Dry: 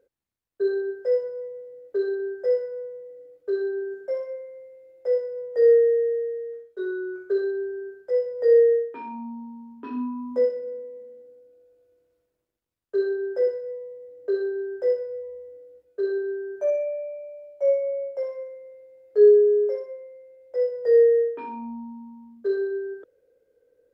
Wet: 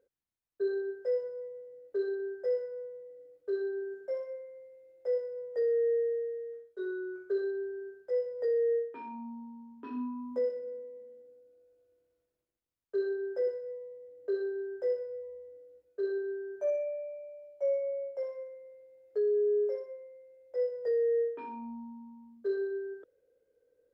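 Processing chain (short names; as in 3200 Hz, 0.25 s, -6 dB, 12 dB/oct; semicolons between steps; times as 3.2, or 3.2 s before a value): limiter -17 dBFS, peak gain reduction 9.5 dB; gain -7 dB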